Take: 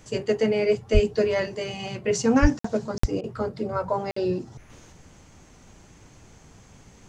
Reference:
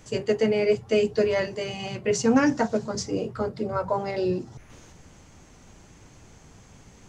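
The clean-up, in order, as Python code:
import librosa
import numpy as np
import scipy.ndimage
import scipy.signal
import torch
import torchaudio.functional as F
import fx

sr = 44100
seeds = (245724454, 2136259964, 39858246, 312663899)

y = fx.fix_deplosive(x, sr, at_s=(0.93, 2.41, 2.99))
y = fx.fix_interpolate(y, sr, at_s=(2.59, 2.98, 4.11), length_ms=54.0)
y = fx.fix_interpolate(y, sr, at_s=(3.21,), length_ms=25.0)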